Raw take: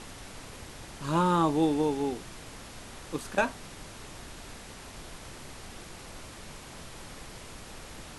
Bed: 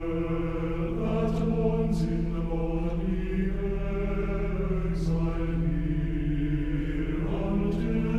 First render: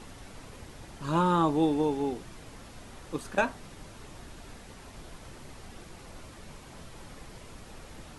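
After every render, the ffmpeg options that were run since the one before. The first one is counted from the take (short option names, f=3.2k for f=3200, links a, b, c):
-af "afftdn=nr=6:nf=-46"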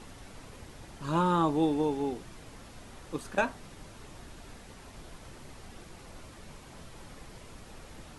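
-af "volume=-1.5dB"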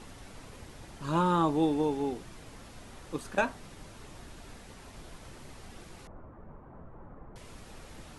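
-filter_complex "[0:a]asettb=1/sr,asplit=3[a][b][c];[a]atrim=end=6.074[d];[b]atrim=start=6.07:end=7.36,asetpts=PTS-STARTPTS,afade=t=in:d=0.004:c=qsin,afade=t=out:st=1.286:d=0.004:c=qsin,lowpass=f=1.3k:w=0.5412,lowpass=f=1.3k:w=1.3066[e];[c]atrim=start=7.356[f];[d][e]acrossfade=d=0.004:c1=hsin:c2=qsin[g];[g][f]acrossfade=d=0.004:c1=qsin:c2=hsin"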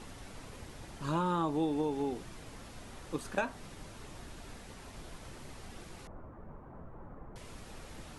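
-af "acompressor=threshold=-30dB:ratio=2.5"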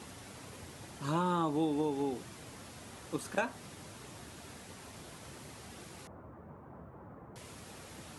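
-af "highpass=f=75:w=0.5412,highpass=f=75:w=1.3066,highshelf=f=7.4k:g=6"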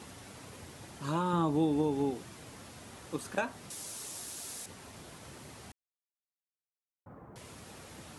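-filter_complex "[0:a]asettb=1/sr,asplit=3[a][b][c];[a]atrim=end=1.334[d];[b]atrim=start=1.33:end=2.11,asetpts=PTS-STARTPTS,afade=t=in:d=0.004:c=qsin,afade=t=out:st=0.776:d=0.004:c=qsin,lowshelf=f=250:g=8.5[e];[c]atrim=start=2.106[f];[d][e]acrossfade=d=0.004:c1=hsin:c2=qsin[g];[g][f]acrossfade=d=0.004:c1=qsin:c2=hsin,asettb=1/sr,asplit=3[h][i][j];[h]atrim=end=3.704[k];[i]atrim=start=3.7:end=4.66,asetpts=PTS-STARTPTS,afade=t=in:d=0.004:c=qsin,afade=t=out:st=0.956:d=0.004:c=qsin,bass=f=250:g=-7,treble=f=4k:g=15[l];[j]atrim=start=4.656[m];[k][l]acrossfade=d=0.004:c1=hsin:c2=qsin[n];[n][m]acrossfade=d=0.004:c1=qsin:c2=hsin,asplit=3[o][p][q];[o]atrim=end=5.72,asetpts=PTS-STARTPTS,afade=t=out:st=5.716:d=0.004:c=hsin[r];[p]atrim=start=5.72:end=7.06,asetpts=PTS-STARTPTS,volume=0[s];[q]atrim=start=7.06,asetpts=PTS-STARTPTS,afade=t=in:d=0.004:c=hsin[t];[r][s][t]concat=n=3:v=0:a=1"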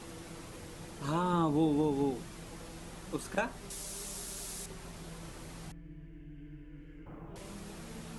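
-filter_complex "[1:a]volume=-21.5dB[a];[0:a][a]amix=inputs=2:normalize=0"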